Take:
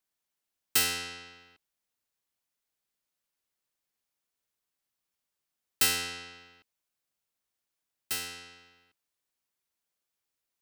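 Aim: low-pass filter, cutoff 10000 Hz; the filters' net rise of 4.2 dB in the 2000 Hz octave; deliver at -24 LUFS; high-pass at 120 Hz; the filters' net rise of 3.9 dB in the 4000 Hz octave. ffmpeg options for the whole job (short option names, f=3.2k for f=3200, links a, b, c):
-af "highpass=120,lowpass=10k,equalizer=f=2k:t=o:g=4,equalizer=f=4k:t=o:g=4,volume=4dB"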